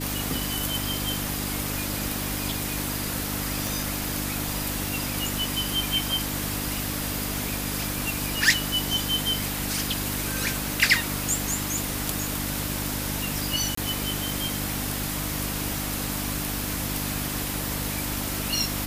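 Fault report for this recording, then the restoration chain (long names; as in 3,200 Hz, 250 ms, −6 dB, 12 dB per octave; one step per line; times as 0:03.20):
mains hum 50 Hz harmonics 6 −33 dBFS
0:03.67: click
0:13.75–0:13.77: drop-out 24 ms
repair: click removal
hum removal 50 Hz, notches 6
repair the gap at 0:13.75, 24 ms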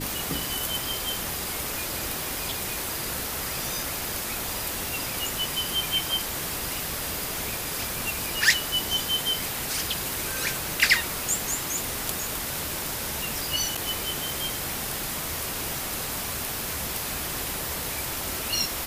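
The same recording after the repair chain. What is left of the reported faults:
none of them is left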